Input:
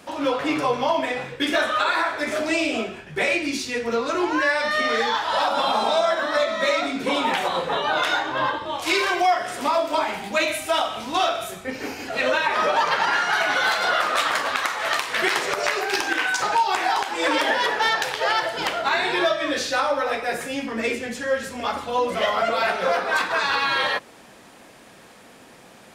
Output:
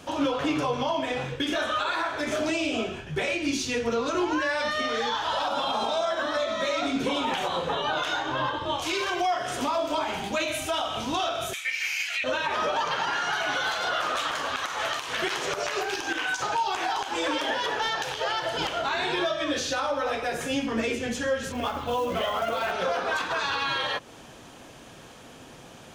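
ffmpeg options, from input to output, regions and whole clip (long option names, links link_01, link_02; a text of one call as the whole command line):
ffmpeg -i in.wav -filter_complex "[0:a]asettb=1/sr,asplit=3[link_01][link_02][link_03];[link_01]atrim=end=11.534[link_04];[link_02]atrim=start=11.53:end=12.24,asetpts=PTS-STARTPTS,afade=type=in:duration=0.004:curve=qsin,afade=type=out:start_time=0.706:duration=0.004:curve=qsin,highpass=frequency=2200:width_type=q:width=5.5,highshelf=frequency=4100:gain=6.5[link_05];[link_03]atrim=start=12.236[link_06];[link_04][link_05]acrossfade=duration=0.004:curve1=hsin:curve2=qsin[link_07];[link_07][link_06]acrossfade=duration=0.004:curve1=qsin:curve2=hsin,asettb=1/sr,asplit=3[link_08][link_09][link_10];[link_08]atrim=end=21.524[link_11];[link_09]atrim=start=21.52:end=22.72,asetpts=PTS-STARTPTS,afade=type=in:duration=0.004:curve=qsin,afade=type=out:start_time=1.196:duration=0.004:curve=qsin,lowpass=3700,acrusher=bits=5:mode=log:mix=0:aa=0.000001[link_12];[link_10]atrim=start=22.716[link_13];[link_11][link_12]acrossfade=duration=0.004:curve1=hsin:curve2=qsin[link_14];[link_14][link_13]acrossfade=duration=0.004:curve1=qsin:curve2=hsin,equalizer=frequency=200:width_type=o:width=0.33:gain=-8,equalizer=frequency=2000:width_type=o:width=0.33:gain=-5,equalizer=frequency=3150:width_type=o:width=0.33:gain=5,equalizer=frequency=6300:width_type=o:width=0.33:gain=7,alimiter=limit=-18.5dB:level=0:latency=1:release=160,bass=frequency=250:gain=8,treble=frequency=4000:gain=-3" out.wav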